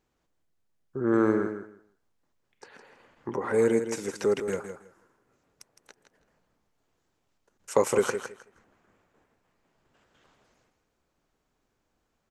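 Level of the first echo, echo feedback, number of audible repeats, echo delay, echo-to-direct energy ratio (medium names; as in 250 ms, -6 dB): -9.0 dB, 18%, 2, 162 ms, -9.0 dB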